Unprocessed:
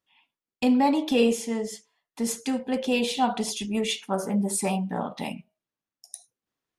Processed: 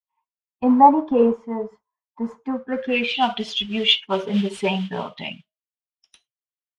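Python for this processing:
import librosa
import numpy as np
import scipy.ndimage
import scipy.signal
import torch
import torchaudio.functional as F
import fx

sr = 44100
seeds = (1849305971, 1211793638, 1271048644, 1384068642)

y = fx.bin_expand(x, sr, power=1.5)
y = fx.small_body(y, sr, hz=(440.0, 940.0), ring_ms=45, db=11, at=(4.0, 5.21))
y = fx.mod_noise(y, sr, seeds[0], snr_db=19)
y = fx.filter_sweep_lowpass(y, sr, from_hz=1000.0, to_hz=3100.0, start_s=2.49, end_s=3.23, q=5.9)
y = y * librosa.db_to_amplitude(4.5)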